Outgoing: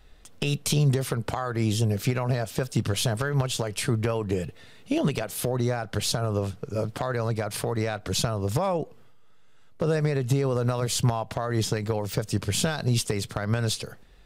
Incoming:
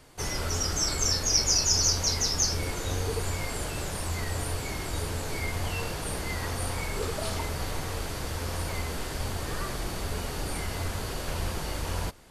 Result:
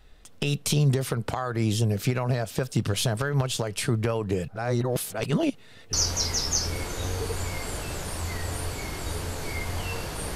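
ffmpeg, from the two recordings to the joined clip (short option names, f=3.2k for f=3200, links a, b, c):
-filter_complex "[0:a]apad=whole_dur=10.35,atrim=end=10.35,asplit=2[a][b];[a]atrim=end=4.482[c];[b]atrim=start=4.478:end=5.932,asetpts=PTS-STARTPTS,areverse[d];[1:a]atrim=start=1.798:end=6.22[e];[c][d]acrossfade=d=0.004:c1=hsin:c2=hsin[f];[f][e]acrossfade=d=0.004:c1=hsin:c2=hsin"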